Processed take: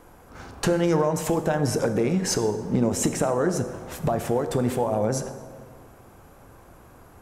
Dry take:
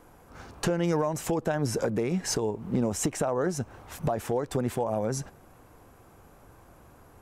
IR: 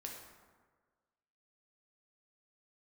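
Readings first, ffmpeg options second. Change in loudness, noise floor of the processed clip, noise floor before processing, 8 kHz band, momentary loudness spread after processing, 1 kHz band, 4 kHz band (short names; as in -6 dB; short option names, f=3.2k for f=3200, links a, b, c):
+4.5 dB, -51 dBFS, -55 dBFS, +4.0 dB, 8 LU, +4.5 dB, +4.0 dB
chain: -filter_complex "[0:a]asplit=2[a][b];[1:a]atrim=start_sample=2205,asetrate=34398,aresample=44100[c];[b][c]afir=irnorm=-1:irlink=0,volume=-0.5dB[d];[a][d]amix=inputs=2:normalize=0"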